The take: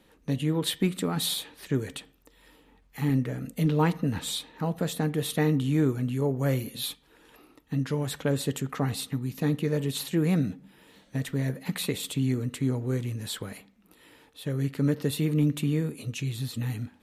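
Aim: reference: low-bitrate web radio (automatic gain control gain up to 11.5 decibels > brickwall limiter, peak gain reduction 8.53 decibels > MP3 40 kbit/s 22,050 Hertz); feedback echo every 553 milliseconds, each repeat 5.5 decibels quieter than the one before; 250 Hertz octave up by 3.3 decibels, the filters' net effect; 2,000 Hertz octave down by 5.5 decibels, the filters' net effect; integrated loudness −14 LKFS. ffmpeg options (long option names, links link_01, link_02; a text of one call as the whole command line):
ffmpeg -i in.wav -af "equalizer=frequency=250:width_type=o:gain=4.5,equalizer=frequency=2000:width_type=o:gain=-7,aecho=1:1:553|1106|1659|2212|2765|3318|3871:0.531|0.281|0.149|0.079|0.0419|0.0222|0.0118,dynaudnorm=maxgain=11.5dB,alimiter=limit=-14dB:level=0:latency=1,volume=11dB" -ar 22050 -c:a libmp3lame -b:a 40k out.mp3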